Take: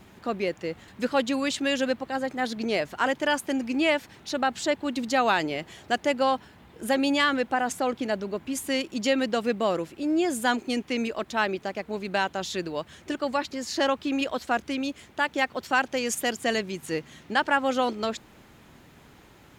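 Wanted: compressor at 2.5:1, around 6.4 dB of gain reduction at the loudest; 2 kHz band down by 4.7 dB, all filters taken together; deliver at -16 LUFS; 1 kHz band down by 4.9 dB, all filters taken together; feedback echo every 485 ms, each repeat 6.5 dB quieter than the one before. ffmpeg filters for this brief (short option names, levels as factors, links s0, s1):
-af "equalizer=f=1000:t=o:g=-6,equalizer=f=2000:t=o:g=-4,acompressor=threshold=0.0282:ratio=2.5,aecho=1:1:485|970|1455|1940|2425|2910:0.473|0.222|0.105|0.0491|0.0231|0.0109,volume=7.08"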